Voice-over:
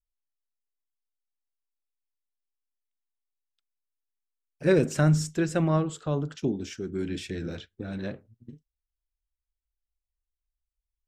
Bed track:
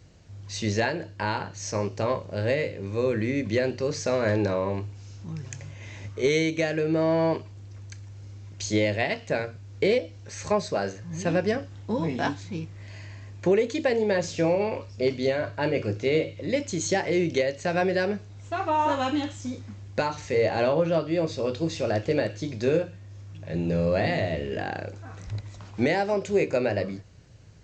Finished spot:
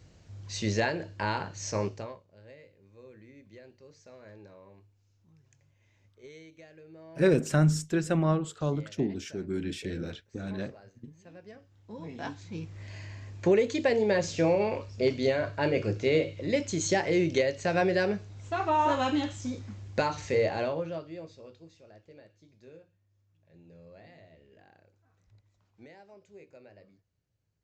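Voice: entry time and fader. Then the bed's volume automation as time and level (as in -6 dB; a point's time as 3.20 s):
2.55 s, -1.5 dB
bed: 1.88 s -2.5 dB
2.25 s -26.5 dB
11.34 s -26.5 dB
12.78 s -1.5 dB
20.32 s -1.5 dB
21.84 s -28.5 dB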